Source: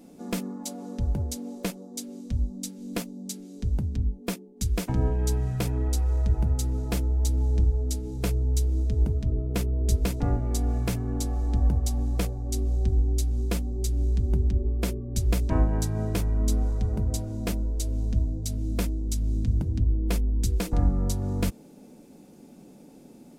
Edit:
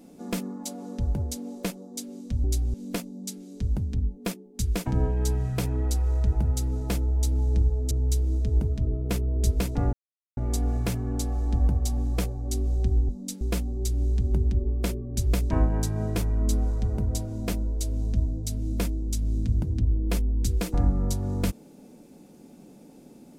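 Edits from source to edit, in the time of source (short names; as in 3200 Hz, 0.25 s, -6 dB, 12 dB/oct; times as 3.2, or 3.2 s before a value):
2.44–2.76 swap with 13.1–13.4
7.93–8.36 cut
10.38 insert silence 0.44 s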